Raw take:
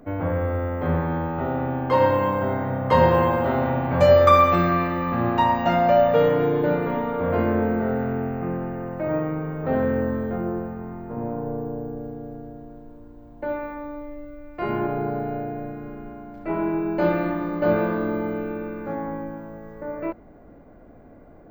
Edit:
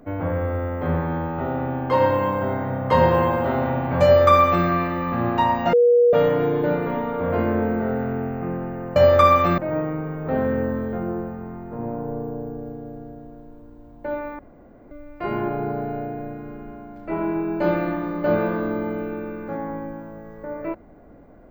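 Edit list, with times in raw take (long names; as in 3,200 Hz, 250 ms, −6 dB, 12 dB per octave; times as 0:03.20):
0:04.04–0:04.66: duplicate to 0:08.96
0:05.73–0:06.13: beep over 481 Hz −11.5 dBFS
0:13.77–0:14.29: fill with room tone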